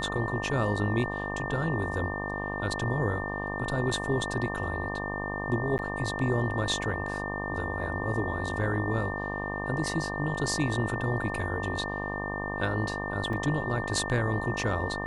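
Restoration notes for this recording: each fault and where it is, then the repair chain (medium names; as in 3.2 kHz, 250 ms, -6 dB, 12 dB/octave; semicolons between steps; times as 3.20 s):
buzz 50 Hz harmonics 24 -35 dBFS
whine 1.8 kHz -35 dBFS
5.78–5.79 s: dropout 9.9 ms
13.33 s: dropout 3.1 ms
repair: band-stop 1.8 kHz, Q 30; de-hum 50 Hz, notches 24; interpolate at 5.78 s, 9.9 ms; interpolate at 13.33 s, 3.1 ms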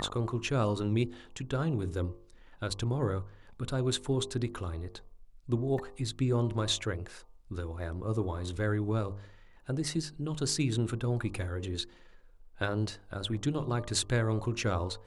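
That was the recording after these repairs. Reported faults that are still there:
nothing left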